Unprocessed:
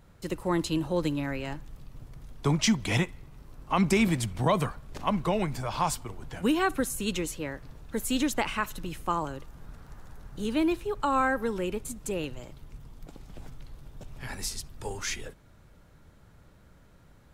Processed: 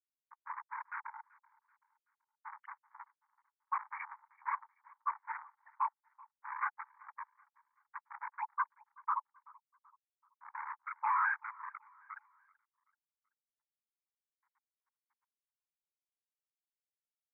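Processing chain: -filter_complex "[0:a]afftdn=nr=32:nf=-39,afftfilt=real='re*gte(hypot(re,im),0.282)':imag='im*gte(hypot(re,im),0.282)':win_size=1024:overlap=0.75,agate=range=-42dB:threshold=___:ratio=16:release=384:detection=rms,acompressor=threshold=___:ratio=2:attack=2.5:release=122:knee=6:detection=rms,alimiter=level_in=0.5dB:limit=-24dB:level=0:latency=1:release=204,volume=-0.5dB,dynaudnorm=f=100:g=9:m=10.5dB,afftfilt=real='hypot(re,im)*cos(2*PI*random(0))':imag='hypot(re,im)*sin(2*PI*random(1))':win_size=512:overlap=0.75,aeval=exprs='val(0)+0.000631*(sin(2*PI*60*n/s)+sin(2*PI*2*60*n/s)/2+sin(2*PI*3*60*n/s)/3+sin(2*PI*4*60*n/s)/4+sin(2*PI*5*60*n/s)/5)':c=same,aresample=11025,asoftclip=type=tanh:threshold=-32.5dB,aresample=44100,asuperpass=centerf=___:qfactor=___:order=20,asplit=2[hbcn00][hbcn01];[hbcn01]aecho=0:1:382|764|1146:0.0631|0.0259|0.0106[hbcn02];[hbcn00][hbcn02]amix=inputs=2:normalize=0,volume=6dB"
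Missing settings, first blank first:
-48dB, -30dB, 1400, 1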